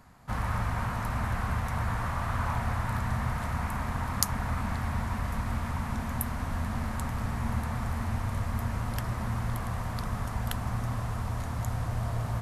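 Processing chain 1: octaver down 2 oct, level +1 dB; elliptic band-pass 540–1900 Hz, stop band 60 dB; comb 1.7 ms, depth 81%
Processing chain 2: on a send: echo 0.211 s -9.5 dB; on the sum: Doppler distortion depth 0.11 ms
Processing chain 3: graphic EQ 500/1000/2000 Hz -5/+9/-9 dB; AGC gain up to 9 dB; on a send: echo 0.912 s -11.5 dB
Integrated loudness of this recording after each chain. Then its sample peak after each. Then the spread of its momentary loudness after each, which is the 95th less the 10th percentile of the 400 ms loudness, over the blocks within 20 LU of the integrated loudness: -36.5, -32.0, -23.0 LUFS; -21.0, -2.5, -1.5 dBFS; 6, 3, 4 LU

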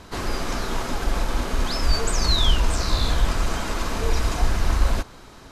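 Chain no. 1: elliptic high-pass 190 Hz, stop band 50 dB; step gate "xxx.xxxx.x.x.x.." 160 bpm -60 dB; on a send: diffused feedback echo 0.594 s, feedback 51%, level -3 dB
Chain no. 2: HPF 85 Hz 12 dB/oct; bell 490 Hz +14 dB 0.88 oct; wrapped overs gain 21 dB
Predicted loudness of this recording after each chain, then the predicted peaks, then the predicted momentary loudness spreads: -28.5, -24.0 LUFS; -13.5, -21.0 dBFS; 6, 2 LU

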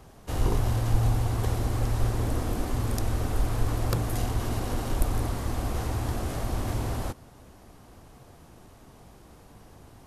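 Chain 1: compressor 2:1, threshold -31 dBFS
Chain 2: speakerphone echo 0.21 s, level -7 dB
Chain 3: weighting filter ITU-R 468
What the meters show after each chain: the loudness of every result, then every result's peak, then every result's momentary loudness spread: -34.5, -29.5, -31.5 LUFS; -16.5, -10.5, -6.0 dBFS; 20, 5, 21 LU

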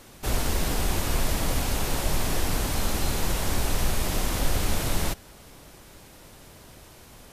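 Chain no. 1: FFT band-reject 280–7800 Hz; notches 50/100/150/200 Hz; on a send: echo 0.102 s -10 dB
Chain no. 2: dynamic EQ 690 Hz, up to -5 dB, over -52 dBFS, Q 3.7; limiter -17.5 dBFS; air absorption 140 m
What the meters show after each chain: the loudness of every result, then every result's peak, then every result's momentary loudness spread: -30.5, -32.0 LUFS; -12.5, -17.5 dBFS; 2, 20 LU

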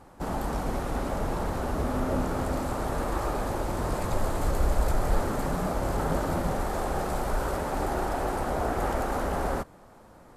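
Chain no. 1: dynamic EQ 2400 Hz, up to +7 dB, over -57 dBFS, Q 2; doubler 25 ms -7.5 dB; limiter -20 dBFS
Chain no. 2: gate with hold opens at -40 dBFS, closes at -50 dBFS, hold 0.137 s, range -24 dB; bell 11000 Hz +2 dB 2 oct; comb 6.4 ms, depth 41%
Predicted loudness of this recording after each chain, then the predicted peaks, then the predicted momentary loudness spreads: -30.5, -29.5 LUFS; -20.0, -11.5 dBFS; 1, 3 LU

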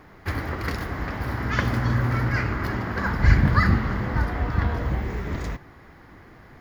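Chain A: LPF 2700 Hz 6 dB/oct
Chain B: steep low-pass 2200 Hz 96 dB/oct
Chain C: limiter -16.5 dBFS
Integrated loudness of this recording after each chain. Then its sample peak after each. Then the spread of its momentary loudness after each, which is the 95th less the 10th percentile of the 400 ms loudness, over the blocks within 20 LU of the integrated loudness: -25.0, -25.0, -27.5 LUFS; -5.0, -5.0, -16.5 dBFS; 11, 11, 6 LU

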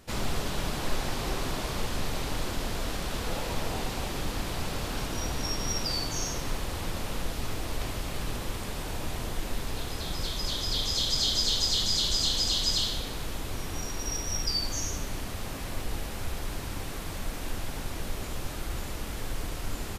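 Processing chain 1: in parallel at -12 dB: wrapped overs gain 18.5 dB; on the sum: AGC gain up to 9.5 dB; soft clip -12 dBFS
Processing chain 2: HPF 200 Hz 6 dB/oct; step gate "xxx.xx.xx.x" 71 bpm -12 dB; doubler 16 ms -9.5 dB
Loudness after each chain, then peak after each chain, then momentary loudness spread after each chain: -22.0, -32.5 LUFS; -12.0, -15.0 dBFS; 10, 15 LU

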